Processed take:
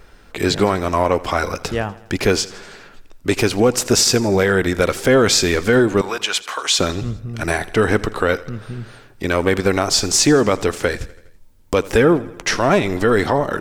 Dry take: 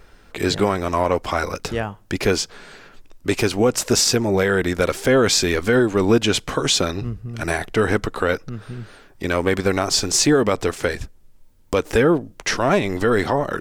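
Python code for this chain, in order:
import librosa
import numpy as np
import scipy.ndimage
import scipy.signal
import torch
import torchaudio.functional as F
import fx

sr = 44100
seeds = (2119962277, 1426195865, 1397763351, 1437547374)

y = fx.cheby1_highpass(x, sr, hz=1000.0, order=2, at=(6.01, 6.79))
y = fx.echo_feedback(y, sr, ms=82, feedback_pct=59, wet_db=-19.5)
y = F.gain(torch.from_numpy(y), 2.5).numpy()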